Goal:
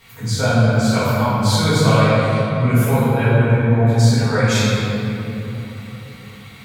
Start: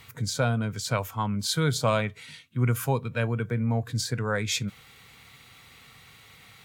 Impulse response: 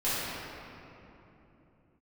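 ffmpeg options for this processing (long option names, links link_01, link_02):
-filter_complex "[1:a]atrim=start_sample=2205,asetrate=38808,aresample=44100[link_01];[0:a][link_01]afir=irnorm=-1:irlink=0,volume=-1.5dB"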